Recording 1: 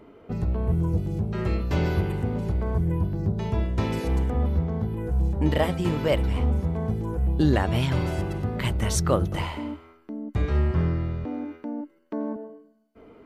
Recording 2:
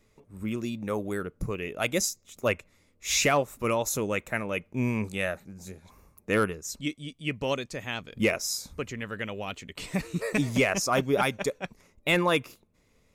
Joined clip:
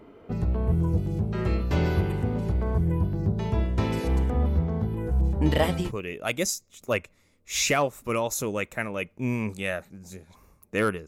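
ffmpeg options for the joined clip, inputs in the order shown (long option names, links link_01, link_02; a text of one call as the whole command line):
ffmpeg -i cue0.wav -i cue1.wav -filter_complex "[0:a]asettb=1/sr,asplit=3[link_01][link_02][link_03];[link_01]atrim=end=5.214[link_04];[link_02]atrim=start=5.21:end=5.92,asetpts=PTS-STARTPTS,afade=type=in:duration=0.004:curve=qsin,afade=type=out:start_time=0.706:duration=0.004:curve=qsin,adynamicequalizer=threshold=0.00794:dfrequency=2400:dqfactor=0.7:tfrequency=2400:tqfactor=0.7:attack=5:release=100:ratio=0.375:range=2:mode=boostabove:tftype=highshelf[link_05];[link_03]atrim=start=5.916[link_06];[link_04][link_05]acrossfade=duration=0.004:curve1=hsin:curve2=qsin[link_07];[link_07][link_06]acrossfade=duration=0.004:curve1=qsin:curve2=hsin,apad=whole_dur=11.07,atrim=end=11.07,atrim=end=5.92,asetpts=PTS-STARTPTS[link_08];[1:a]atrim=start=1.35:end=6.62,asetpts=PTS-STARTPTS[link_09];[link_08][link_09]acrossfade=duration=0.12:curve1=tri:curve2=tri" out.wav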